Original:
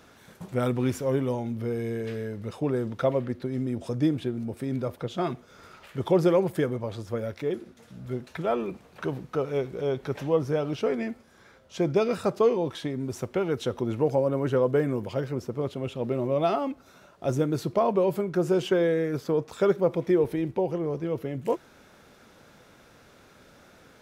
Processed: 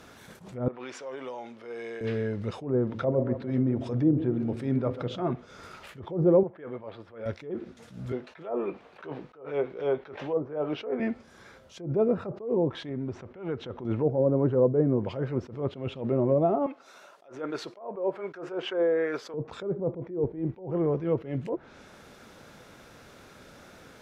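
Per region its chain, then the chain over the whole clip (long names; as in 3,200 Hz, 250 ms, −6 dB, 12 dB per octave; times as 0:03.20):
0:00.68–0:02.01: high-pass filter 650 Hz + high-frequency loss of the air 100 metres + downward compressor, threshold −37 dBFS
0:02.84–0:05.30: hum removal 55.7 Hz, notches 10 + feedback echo with a low-pass in the loop 139 ms, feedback 48%, low-pass 1,800 Hz, level −13 dB
0:06.43–0:07.26: high-pass filter 760 Hz 6 dB per octave + high-frequency loss of the air 440 metres
0:08.12–0:11.00: three-way crossover with the lows and the highs turned down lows −13 dB, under 310 Hz, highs −14 dB, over 4,100 Hz + double-tracking delay 20 ms −12.5 dB
0:12.89–0:13.85: low-pass filter 2,200 Hz + downward compressor 2.5 to 1, threshold −34 dBFS
0:16.66–0:19.34: high-pass filter 490 Hz + dynamic equaliser 1,600 Hz, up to +5 dB, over −45 dBFS, Q 1
whole clip: treble cut that deepens with the level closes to 620 Hz, closed at −21.5 dBFS; level that may rise only so fast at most 130 dB per second; level +3.5 dB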